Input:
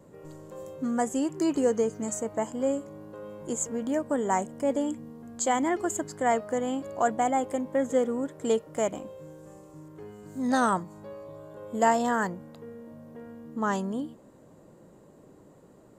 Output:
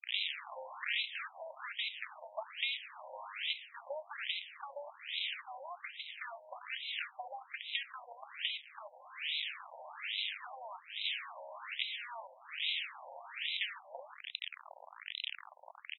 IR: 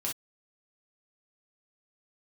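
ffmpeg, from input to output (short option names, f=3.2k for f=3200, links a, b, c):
-filter_complex "[0:a]aresample=16000,acrusher=bits=5:dc=4:mix=0:aa=0.000001,aresample=44100,aexciter=amount=15:drive=3.9:freq=2.3k,asplit=2[a][b];[b]equalizer=f=1.3k:t=o:w=1.9:g=13.5[c];[1:a]atrim=start_sample=2205,asetrate=74970,aresample=44100[d];[c][d]afir=irnorm=-1:irlink=0,volume=-21dB[e];[a][e]amix=inputs=2:normalize=0,aeval=exprs='(tanh(10*val(0)+0.55)-tanh(0.55))/10':c=same,asubboost=boost=11:cutoff=51,acompressor=threshold=-37dB:ratio=6,afftfilt=real='re*between(b*sr/1024,690*pow(2900/690,0.5+0.5*sin(2*PI*1.2*pts/sr))/1.41,690*pow(2900/690,0.5+0.5*sin(2*PI*1.2*pts/sr))*1.41)':imag='im*between(b*sr/1024,690*pow(2900/690,0.5+0.5*sin(2*PI*1.2*pts/sr))/1.41,690*pow(2900/690,0.5+0.5*sin(2*PI*1.2*pts/sr))*1.41)':win_size=1024:overlap=0.75,volume=12.5dB"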